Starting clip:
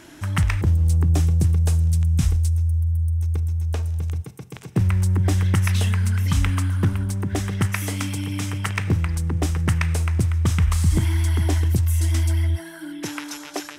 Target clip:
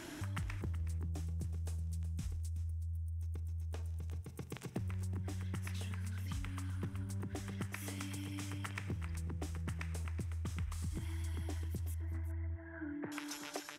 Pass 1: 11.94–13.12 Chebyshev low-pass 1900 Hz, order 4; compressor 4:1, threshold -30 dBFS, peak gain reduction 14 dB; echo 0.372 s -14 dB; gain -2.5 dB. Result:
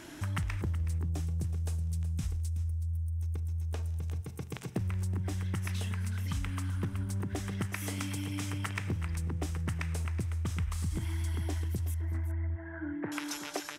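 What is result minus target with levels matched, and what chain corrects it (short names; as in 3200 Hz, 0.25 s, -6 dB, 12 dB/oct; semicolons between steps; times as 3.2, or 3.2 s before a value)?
compressor: peak gain reduction -7 dB
11.94–13.12 Chebyshev low-pass 1900 Hz, order 4; compressor 4:1, threshold -39.5 dBFS, peak gain reduction 21 dB; echo 0.372 s -14 dB; gain -2.5 dB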